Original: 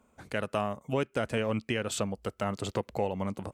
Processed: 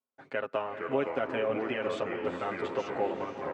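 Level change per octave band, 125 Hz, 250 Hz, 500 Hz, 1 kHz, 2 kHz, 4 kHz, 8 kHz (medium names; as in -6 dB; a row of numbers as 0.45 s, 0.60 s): -11.0 dB, -3.0 dB, +1.5 dB, +1.0 dB, +1.0 dB, -5.0 dB, under -15 dB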